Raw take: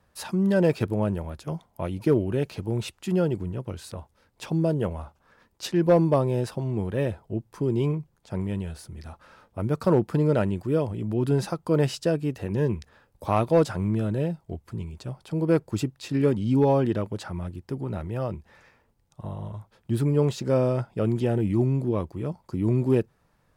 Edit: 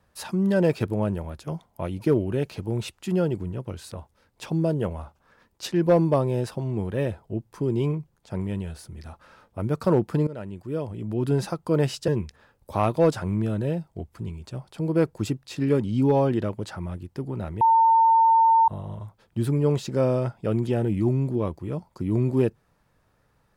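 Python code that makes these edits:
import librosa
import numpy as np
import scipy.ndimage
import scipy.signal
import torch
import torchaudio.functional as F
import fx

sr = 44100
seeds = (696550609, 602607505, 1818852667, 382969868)

y = fx.edit(x, sr, fx.fade_in_from(start_s=10.27, length_s=1.04, floor_db=-17.5),
    fx.cut(start_s=12.08, length_s=0.53),
    fx.bleep(start_s=18.14, length_s=1.07, hz=905.0, db=-14.0), tone=tone)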